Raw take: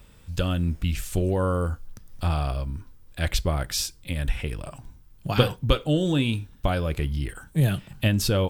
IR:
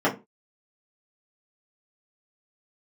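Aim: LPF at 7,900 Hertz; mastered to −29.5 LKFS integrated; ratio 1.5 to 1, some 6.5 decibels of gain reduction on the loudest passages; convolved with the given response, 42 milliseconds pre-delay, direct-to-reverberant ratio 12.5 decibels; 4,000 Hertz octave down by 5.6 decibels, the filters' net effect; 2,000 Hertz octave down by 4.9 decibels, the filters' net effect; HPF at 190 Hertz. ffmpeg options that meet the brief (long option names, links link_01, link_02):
-filter_complex "[0:a]highpass=190,lowpass=7900,equalizer=frequency=2000:width_type=o:gain=-5,equalizer=frequency=4000:width_type=o:gain=-5.5,acompressor=threshold=-34dB:ratio=1.5,asplit=2[link_01][link_02];[1:a]atrim=start_sample=2205,adelay=42[link_03];[link_02][link_03]afir=irnorm=-1:irlink=0,volume=-29dB[link_04];[link_01][link_04]amix=inputs=2:normalize=0,volume=4.5dB"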